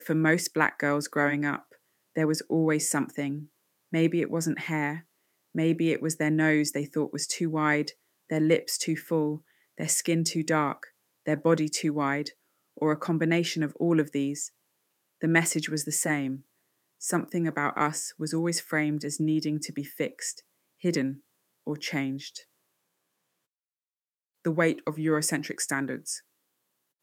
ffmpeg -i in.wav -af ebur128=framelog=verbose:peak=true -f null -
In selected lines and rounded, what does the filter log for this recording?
Integrated loudness:
  I:         -27.9 LUFS
  Threshold: -38.3 LUFS
Loudness range:
  LRA:         6.0 LU
  Threshold: -48.9 LUFS
  LRA low:   -33.2 LUFS
  LRA high:  -27.3 LUFS
True peak:
  Peak:       -6.2 dBFS